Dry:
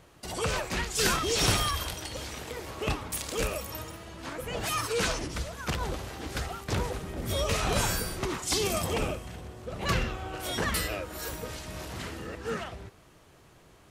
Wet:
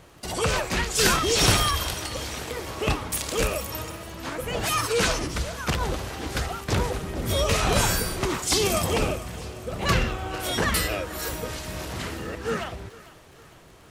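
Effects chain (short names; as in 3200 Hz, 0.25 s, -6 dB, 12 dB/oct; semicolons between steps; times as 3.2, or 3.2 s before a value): crackle 28/s -47 dBFS; thinning echo 0.451 s, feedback 55%, level -18 dB; gain +5.5 dB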